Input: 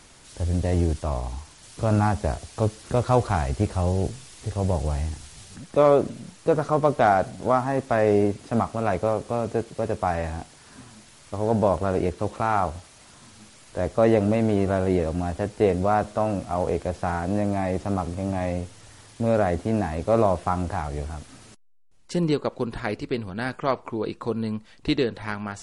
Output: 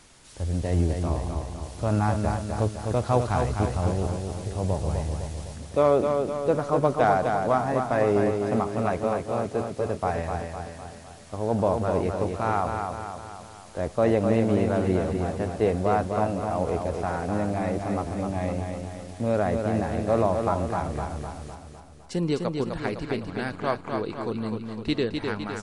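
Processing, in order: feedback echo 0.254 s, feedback 53%, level -5 dB; gain -3 dB

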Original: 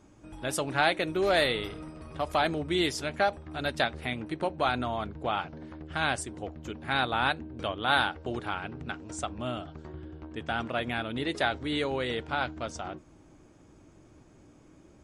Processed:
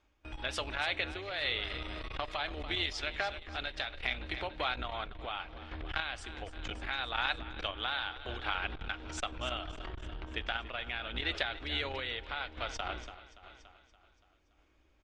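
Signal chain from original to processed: octaver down 2 oct, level +3 dB; LPF 4300 Hz 12 dB/oct; reverse; upward compressor, threshold -43 dBFS; reverse; limiter -18.5 dBFS, peak gain reduction 8.5 dB; compressor 6:1, threshold -37 dBFS, peak gain reduction 13.5 dB; gate with hold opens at -38 dBFS; bell 170 Hz -13.5 dB 2 oct; feedback echo 0.286 s, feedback 56%, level -13 dB; on a send at -22 dB: reverb RT60 0.85 s, pre-delay 4 ms; on the sum: random-step tremolo 3.5 Hz; bell 3100 Hz +10 dB 2 oct; core saturation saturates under 450 Hz; gain +6.5 dB

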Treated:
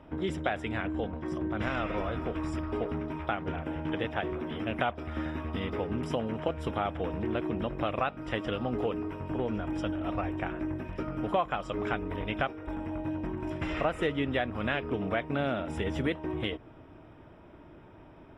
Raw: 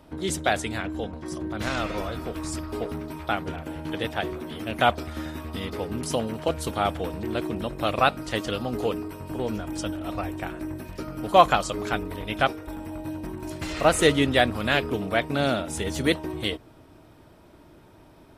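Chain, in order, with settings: compressor 4:1, threshold -27 dBFS, peak gain reduction 15 dB; polynomial smoothing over 25 samples

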